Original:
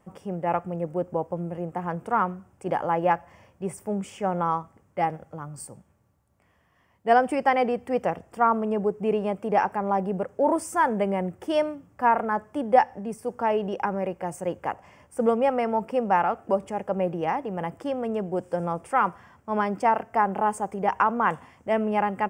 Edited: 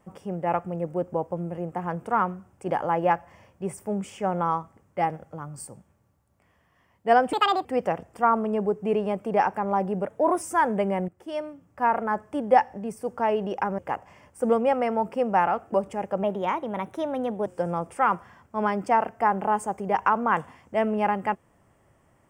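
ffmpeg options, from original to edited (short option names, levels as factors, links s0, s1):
-filter_complex "[0:a]asplit=9[s0][s1][s2][s3][s4][s5][s6][s7][s8];[s0]atrim=end=7.334[s9];[s1]atrim=start=7.33:end=7.83,asetpts=PTS-STARTPTS,asetrate=68796,aresample=44100[s10];[s2]atrim=start=7.826:end=10.234[s11];[s3]atrim=start=10.23:end=10.63,asetpts=PTS-STARTPTS,asetrate=48510,aresample=44100,atrim=end_sample=16036,asetpts=PTS-STARTPTS[s12];[s4]atrim=start=10.626:end=11.3,asetpts=PTS-STARTPTS,afade=t=out:st=0.67:d=0.004:c=hsin:silence=0.188365[s13];[s5]atrim=start=11.3:end=14.002,asetpts=PTS-STARTPTS,afade=t=in:d=1.06:silence=0.188365[s14];[s6]atrim=start=14.548:end=17.004[s15];[s7]atrim=start=17:end=18.4,asetpts=PTS-STARTPTS,asetrate=50274,aresample=44100[s16];[s8]atrim=start=18.396[s17];[s9][s10]acrossfade=d=0.004:c1=hsin:c2=hsin[s18];[s18][s11]acrossfade=d=0.004:c1=hsin:c2=hsin[s19];[s19][s12]acrossfade=d=0.004:c1=hsin:c2=hsin[s20];[s13][s14]concat=n=2:v=0:a=1[s21];[s20][s21]acrossfade=d=0.004:c1=hsin:c2=hsin[s22];[s22][s15]acrossfade=d=0.004:c1=hsin:c2=hsin[s23];[s23][s16]acrossfade=d=0.004:c1=hsin:c2=hsin[s24];[s24][s17]acrossfade=d=0.004:c1=hsin:c2=hsin"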